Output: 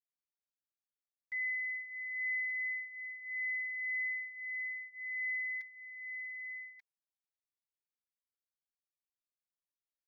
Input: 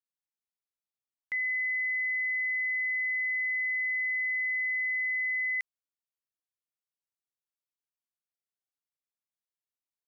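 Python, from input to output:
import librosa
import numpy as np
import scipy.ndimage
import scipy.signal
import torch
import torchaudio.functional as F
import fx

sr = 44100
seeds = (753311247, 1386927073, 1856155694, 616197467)

y = fx.fixed_phaser(x, sr, hz=1900.0, stages=8)
y = y + 0.74 * np.pad(y, (int(5.0 * sr / 1000.0), 0))[:len(y)]
y = y + 10.0 ** (-7.5 / 20.0) * np.pad(y, (int(1186 * sr / 1000.0), 0))[:len(y)]
y = fx.comb_cascade(y, sr, direction='rising', hz=0.26)
y = y * 10.0 ** (-8.0 / 20.0)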